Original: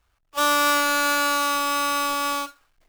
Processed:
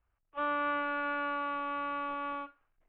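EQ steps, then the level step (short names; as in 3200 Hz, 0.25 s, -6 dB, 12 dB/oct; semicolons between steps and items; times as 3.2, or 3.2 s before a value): steep low-pass 3100 Hz 36 dB/oct; air absorption 450 m; -9.0 dB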